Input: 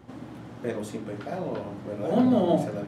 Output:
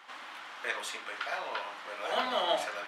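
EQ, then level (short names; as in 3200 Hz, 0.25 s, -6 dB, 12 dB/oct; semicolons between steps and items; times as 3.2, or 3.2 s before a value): resonant high-pass 1100 Hz, resonance Q 1.5; bell 2900 Hz +10.5 dB 2.1 oct; 0.0 dB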